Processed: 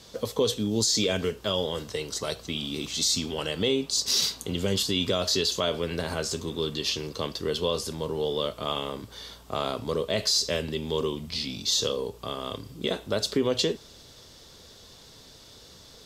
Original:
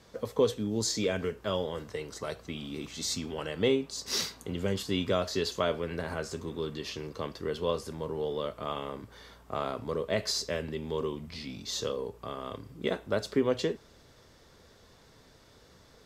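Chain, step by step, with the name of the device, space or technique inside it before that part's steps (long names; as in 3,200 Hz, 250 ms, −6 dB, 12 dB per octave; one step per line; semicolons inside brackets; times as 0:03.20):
over-bright horn tweeter (high shelf with overshoot 2,600 Hz +7 dB, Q 1.5; brickwall limiter −19 dBFS, peak gain reduction 8 dB)
level +4.5 dB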